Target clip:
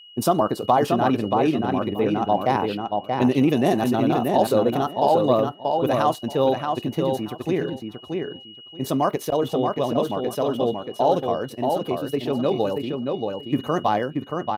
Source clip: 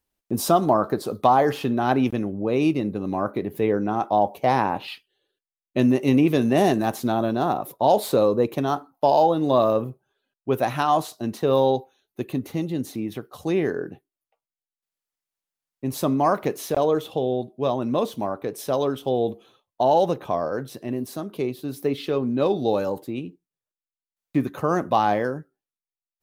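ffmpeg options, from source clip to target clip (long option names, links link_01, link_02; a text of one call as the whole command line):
ffmpeg -i in.wav -filter_complex "[0:a]aeval=exprs='val(0)+0.00631*sin(2*PI*2900*n/s)':channel_layout=same,atempo=1.8,asplit=2[link_01][link_02];[link_02]adelay=630,lowpass=frequency=3800:poles=1,volume=-4dB,asplit=2[link_03][link_04];[link_04]adelay=630,lowpass=frequency=3800:poles=1,volume=0.18,asplit=2[link_05][link_06];[link_06]adelay=630,lowpass=frequency=3800:poles=1,volume=0.18[link_07];[link_01][link_03][link_05][link_07]amix=inputs=4:normalize=0" out.wav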